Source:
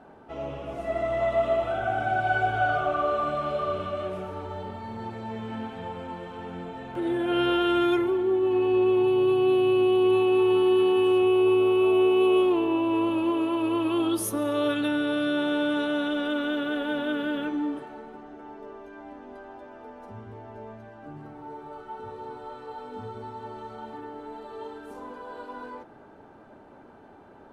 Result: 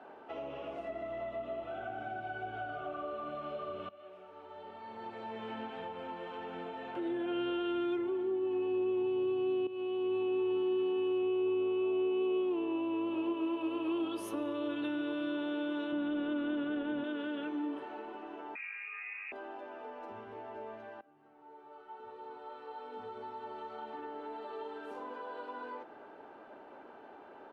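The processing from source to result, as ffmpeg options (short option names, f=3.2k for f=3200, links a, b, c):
-filter_complex "[0:a]asplit=2[a][b];[b]afade=t=in:st=12.53:d=0.01,afade=t=out:st=13.6:d=0.01,aecho=0:1:600|1200|1800|2400|3000|3600|4200|4800|5400|6000|6600|7200:0.375837|0.281878|0.211409|0.158556|0.118917|0.089188|0.066891|0.0501682|0.0376262|0.0282196|0.0211647|0.0158735[c];[a][c]amix=inputs=2:normalize=0,asettb=1/sr,asplit=3[d][e][f];[d]atrim=end=15.924[g];[e]atrim=start=15.92:end=17.04,asetpts=PTS-STARTPTS,afade=t=in:d=0.004:c=qsin,afade=t=out:st=1.116:d=0.004:c=qsin,bass=f=250:g=11,treble=f=4k:g=-11[h];[f]atrim=start=17.036[i];[g][h]acrossfade=d=0.004:c1=hsin:c2=qsin[j];[j][i]acrossfade=d=0.004:c1=qsin:c2=hsin,asettb=1/sr,asplit=3[k][l][m];[k]atrim=end=18.554[n];[l]atrim=start=18.55:end=19.32,asetpts=PTS-STARTPTS,afade=t=in:d=0.004:c=qsin,afade=t=out:st=0.766:d=0.004:c=qsin,lowpass=f=2.4k:t=q:w=0.5098,lowpass=f=2.4k:t=q:w=0.6013,lowpass=f=2.4k:t=q:w=0.9,lowpass=f=2.4k:t=q:w=2.563,afreqshift=-2800[o];[m]atrim=start=19.316[p];[n][o]acrossfade=d=0.004:c1=hsin:c2=qsin[q];[q][p]acrossfade=d=0.004:c1=qsin:c2=hsin,asplit=4[r][s][t][u];[r]atrim=end=3.89,asetpts=PTS-STARTPTS,afade=t=out:st=3.886:d=0.004:c=hsin:silence=0.112202[v];[s]atrim=start=3.89:end=9.67,asetpts=PTS-STARTPTS,afade=t=in:d=1.63:c=qua:silence=0.112202,afade=t=out:st=5.776:d=0.004:c=hsin:silence=0.199526[w];[t]atrim=start=9.67:end=21.01,asetpts=PTS-STARTPTS,afade=t=in:d=0.56:silence=0.199526,afade=t=out:st=11.336:d=0.004:c=hsin:silence=0.0794328[x];[u]atrim=start=21.01,asetpts=PTS-STARTPTS,afade=t=in:d=3.36:silence=0.0794328[y];[v][w][x][y]concat=n=4:v=0:a=1,acrossover=split=290 4700:gain=0.112 1 0.2[z][aa][ab];[z][aa][ab]amix=inputs=3:normalize=0,acrossover=split=290[ac][ad];[ad]acompressor=threshold=-40dB:ratio=8[ae];[ac][ae]amix=inputs=2:normalize=0,equalizer=f=2.8k:t=o:w=0.3:g=4"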